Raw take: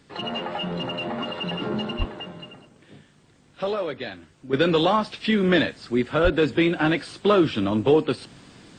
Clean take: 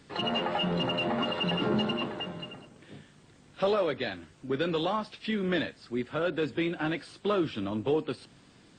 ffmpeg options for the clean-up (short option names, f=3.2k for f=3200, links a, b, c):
-filter_complex "[0:a]asplit=3[a][b][c];[a]afade=t=out:st=1.98:d=0.02[d];[b]highpass=f=140:w=0.5412,highpass=f=140:w=1.3066,afade=t=in:st=1.98:d=0.02,afade=t=out:st=2.1:d=0.02[e];[c]afade=t=in:st=2.1:d=0.02[f];[d][e][f]amix=inputs=3:normalize=0,asplit=3[g][h][i];[g]afade=t=out:st=6.23:d=0.02[j];[h]highpass=f=140:w=0.5412,highpass=f=140:w=1.3066,afade=t=in:st=6.23:d=0.02,afade=t=out:st=6.35:d=0.02[k];[i]afade=t=in:st=6.35:d=0.02[l];[j][k][l]amix=inputs=3:normalize=0,asetnsamples=n=441:p=0,asendcmd='4.53 volume volume -9.5dB',volume=0dB"